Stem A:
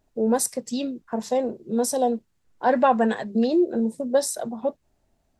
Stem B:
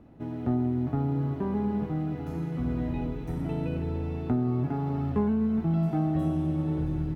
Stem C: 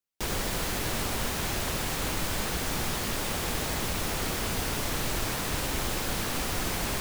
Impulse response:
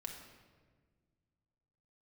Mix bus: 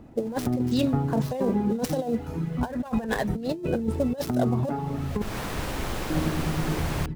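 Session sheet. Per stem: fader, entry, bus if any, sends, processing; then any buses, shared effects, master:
+1.0 dB, 0.00 s, no send, gap after every zero crossing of 0.075 ms
+1.5 dB, 0.00 s, muted 0:05.22–0:06.10, send −12 dB, reverb reduction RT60 2 s
−1.5 dB, 0.05 s, no send, high-shelf EQ 3,000 Hz −10 dB; automatic ducking −22 dB, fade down 0.65 s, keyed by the first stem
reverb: on, RT60 1.6 s, pre-delay 4 ms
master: compressor whose output falls as the input rises −24 dBFS, ratio −0.5

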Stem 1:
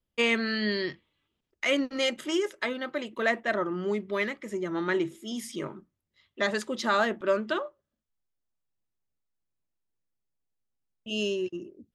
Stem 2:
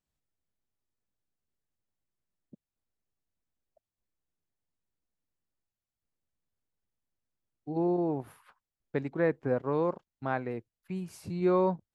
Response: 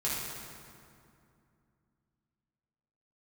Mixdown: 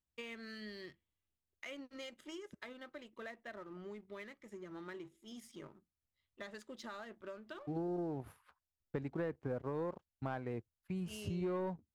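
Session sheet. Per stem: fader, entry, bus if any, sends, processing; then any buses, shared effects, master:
−19.5 dB, 0.00 s, no send, downward compressor 5 to 1, threshold −29 dBFS, peak gain reduction 9 dB
−4.0 dB, 0.00 s, no send, amplitude modulation by smooth noise, depth 55%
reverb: not used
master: parametric band 73 Hz +14.5 dB 0.78 octaves; leveller curve on the samples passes 1; downward compressor 5 to 1, threshold −36 dBFS, peak gain reduction 9.5 dB

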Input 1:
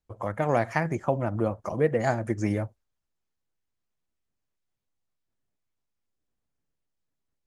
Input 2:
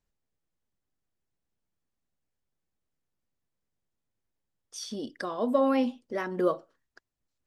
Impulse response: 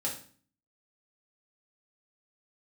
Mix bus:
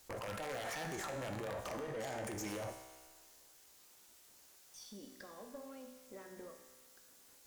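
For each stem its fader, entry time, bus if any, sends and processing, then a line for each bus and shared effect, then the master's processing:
−5.5 dB, 0.00 s, send −18 dB, bass and treble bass −14 dB, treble +9 dB; envelope flattener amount 100%
−4.0 dB, 0.00 s, send −7 dB, downward compressor, threshold −35 dBFS, peak gain reduction 15 dB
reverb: on, RT60 0.45 s, pre-delay 3 ms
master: wrap-around overflow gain 16 dB; tube saturation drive 27 dB, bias 0.35; tuned comb filter 64 Hz, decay 1.7 s, harmonics all, mix 80%

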